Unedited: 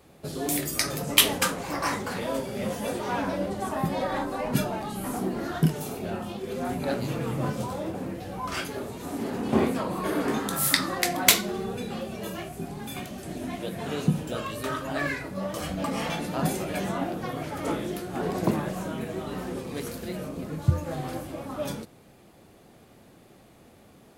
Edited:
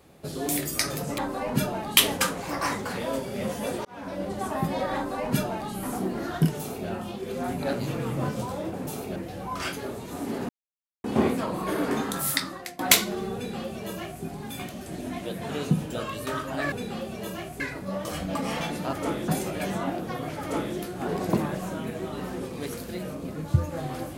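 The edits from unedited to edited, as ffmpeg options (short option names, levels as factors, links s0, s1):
-filter_complex "[0:a]asplit=12[s0][s1][s2][s3][s4][s5][s6][s7][s8][s9][s10][s11];[s0]atrim=end=1.182[s12];[s1]atrim=start=4.158:end=4.952[s13];[s2]atrim=start=1.178:end=3.06,asetpts=PTS-STARTPTS,afade=t=out:st=1.878:d=0.004:c=hsin[s14];[s3]atrim=start=3.06:end=8.082,asetpts=PTS-STARTPTS,afade=t=in:d=0.5[s15];[s4]atrim=start=5.798:end=6.092[s16];[s5]atrim=start=8.078:end=9.41,asetpts=PTS-STARTPTS,afade=t=out:st=1.328:d=0.004:c=hsin,apad=pad_dur=0.55[s17];[s6]atrim=start=9.41:end=11.16,asetpts=PTS-STARTPTS,afade=t=in:d=0.004:c=hsin,afade=t=out:st=1.05:d=0.7:silence=0.0749894[s18];[s7]atrim=start=11.16:end=15.092,asetpts=PTS-STARTPTS,afade=t=in:d=0.004:c=hsin:silence=0.0749894[s19];[s8]atrim=start=11.718:end=12.602[s20];[s9]atrim=start=15.088:end=16.422[s21];[s10]atrim=start=17.548:end=17.902[s22];[s11]atrim=start=16.418[s23];[s12][s13]acrossfade=d=0.004:c1=hsin:c2=hsin[s24];[s14][s15]concat=n=2:v=0:a=1[s25];[s24][s25]acrossfade=d=0.004:c1=hsin:c2=hsin[s26];[s26][s16]acrossfade=d=0.004:c1=hsin:c2=hsin[s27];[s17][s18][s19]concat=n=3:v=0:a=1[s28];[s27][s28]acrossfade=d=0.004:c1=hsin:c2=hsin[s29];[s29][s20]acrossfade=d=0.004:c1=hsin:c2=hsin[s30];[s30][s21]acrossfade=d=0.004:c1=hsin:c2=hsin[s31];[s31][s22]acrossfade=d=0.004:c1=hsin:c2=hsin[s32];[s32][s23]acrossfade=d=0.004:c1=hsin:c2=hsin"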